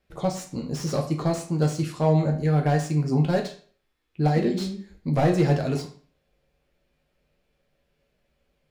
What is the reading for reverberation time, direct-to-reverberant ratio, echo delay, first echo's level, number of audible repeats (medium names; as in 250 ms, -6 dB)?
0.45 s, 1.5 dB, no echo, no echo, no echo